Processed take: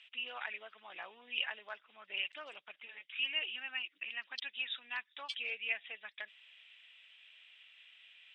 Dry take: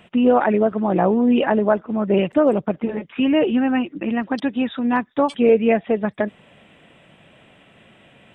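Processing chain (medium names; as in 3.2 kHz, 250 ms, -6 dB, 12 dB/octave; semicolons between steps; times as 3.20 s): Butterworth band-pass 3.6 kHz, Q 1.2; trim -2 dB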